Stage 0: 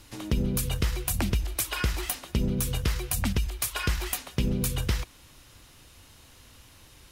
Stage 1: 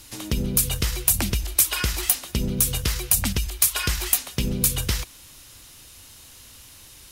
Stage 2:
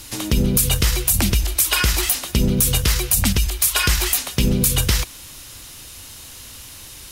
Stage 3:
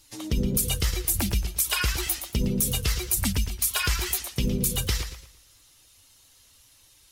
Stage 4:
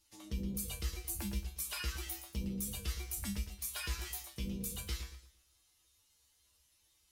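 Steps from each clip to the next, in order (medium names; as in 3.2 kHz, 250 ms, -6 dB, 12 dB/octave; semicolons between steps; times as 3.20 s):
treble shelf 3.6 kHz +11.5 dB; trim +1 dB
peak limiter -13 dBFS, peak gain reduction 9.5 dB; trim +8 dB
expander on every frequency bin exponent 1.5; modulated delay 114 ms, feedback 34%, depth 130 cents, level -9.5 dB; trim -5.5 dB
feedback comb 67 Hz, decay 0.27 s, harmonics odd, mix 90%; trim -5.5 dB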